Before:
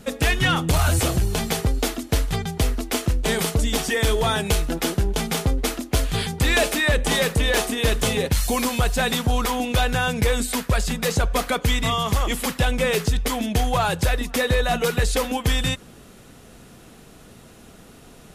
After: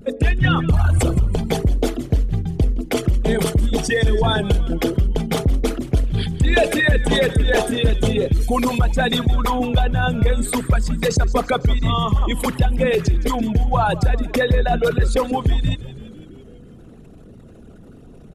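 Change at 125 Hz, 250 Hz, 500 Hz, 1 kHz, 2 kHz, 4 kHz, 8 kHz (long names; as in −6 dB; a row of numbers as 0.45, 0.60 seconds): +5.0, +4.5, +3.5, +2.0, 0.0, −2.0, −5.5 decibels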